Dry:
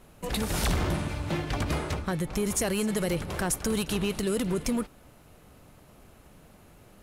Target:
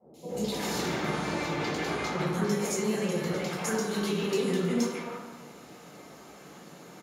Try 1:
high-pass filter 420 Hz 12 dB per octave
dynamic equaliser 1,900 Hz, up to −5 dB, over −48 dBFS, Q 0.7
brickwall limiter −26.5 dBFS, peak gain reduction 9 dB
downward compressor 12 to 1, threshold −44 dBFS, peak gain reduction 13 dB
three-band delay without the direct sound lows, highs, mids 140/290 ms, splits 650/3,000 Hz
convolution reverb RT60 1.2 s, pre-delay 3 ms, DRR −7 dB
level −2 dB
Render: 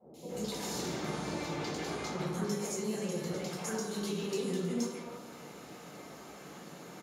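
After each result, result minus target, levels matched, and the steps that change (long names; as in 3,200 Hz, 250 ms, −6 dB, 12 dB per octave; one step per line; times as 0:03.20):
downward compressor: peak gain reduction +7 dB; 2,000 Hz band −3.0 dB
change: downward compressor 12 to 1, threshold −37 dBFS, peak gain reduction 6.5 dB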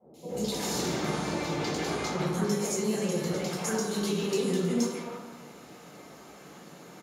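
2,000 Hz band −3.0 dB
change: dynamic equaliser 6,900 Hz, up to −5 dB, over −48 dBFS, Q 0.7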